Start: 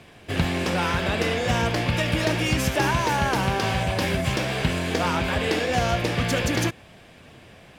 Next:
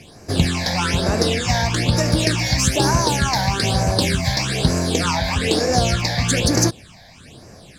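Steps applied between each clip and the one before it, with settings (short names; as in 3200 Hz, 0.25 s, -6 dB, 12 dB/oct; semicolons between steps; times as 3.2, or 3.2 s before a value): band shelf 6500 Hz +9 dB; phaser stages 8, 1.1 Hz, lowest notch 360–3300 Hz; gain +5.5 dB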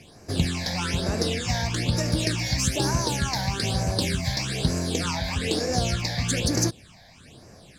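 dynamic EQ 970 Hz, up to -4 dB, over -34 dBFS, Q 0.75; gain -6 dB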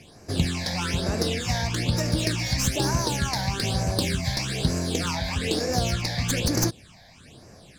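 tracing distortion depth 0.043 ms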